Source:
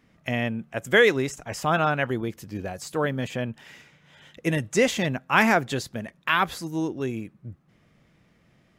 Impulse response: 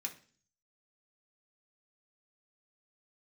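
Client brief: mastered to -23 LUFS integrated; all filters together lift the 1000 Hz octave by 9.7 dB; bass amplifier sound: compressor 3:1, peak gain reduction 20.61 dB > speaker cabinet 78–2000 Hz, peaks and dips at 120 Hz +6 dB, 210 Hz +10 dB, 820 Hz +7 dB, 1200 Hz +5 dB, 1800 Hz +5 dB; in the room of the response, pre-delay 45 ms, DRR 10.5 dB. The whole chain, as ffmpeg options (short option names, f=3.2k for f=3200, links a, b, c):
-filter_complex "[0:a]equalizer=f=1k:t=o:g=6,asplit=2[a][b];[1:a]atrim=start_sample=2205,adelay=45[c];[b][c]afir=irnorm=-1:irlink=0,volume=-9.5dB[d];[a][d]amix=inputs=2:normalize=0,acompressor=threshold=-39dB:ratio=3,highpass=f=78:w=0.5412,highpass=f=78:w=1.3066,equalizer=f=120:t=q:w=4:g=6,equalizer=f=210:t=q:w=4:g=10,equalizer=f=820:t=q:w=4:g=7,equalizer=f=1.2k:t=q:w=4:g=5,equalizer=f=1.8k:t=q:w=4:g=5,lowpass=f=2k:w=0.5412,lowpass=f=2k:w=1.3066,volume=12.5dB"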